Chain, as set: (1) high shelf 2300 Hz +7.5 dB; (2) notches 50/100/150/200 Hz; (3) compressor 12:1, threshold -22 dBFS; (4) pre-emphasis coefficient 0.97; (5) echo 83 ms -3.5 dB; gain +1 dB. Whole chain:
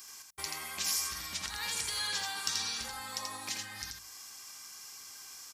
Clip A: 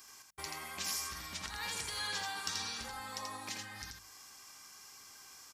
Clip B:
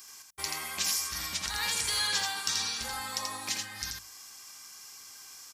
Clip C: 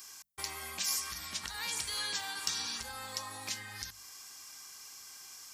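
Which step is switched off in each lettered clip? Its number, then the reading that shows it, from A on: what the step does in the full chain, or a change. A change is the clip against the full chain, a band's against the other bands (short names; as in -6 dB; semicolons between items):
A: 1, 8 kHz band -6.0 dB; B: 3, mean gain reduction 2.5 dB; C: 5, 500 Hz band +1.5 dB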